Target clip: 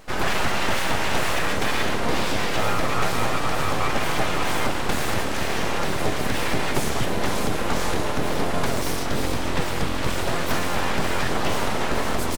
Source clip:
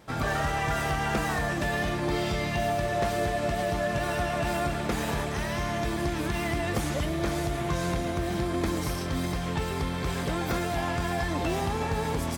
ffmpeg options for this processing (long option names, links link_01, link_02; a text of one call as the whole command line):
ffmpeg -i in.wav -filter_complex "[0:a]asplit=2[link_01][link_02];[link_02]asetrate=33038,aresample=44100,atempo=1.33484,volume=-9dB[link_03];[link_01][link_03]amix=inputs=2:normalize=0,aeval=exprs='abs(val(0))':channel_layout=same,volume=7.5dB" out.wav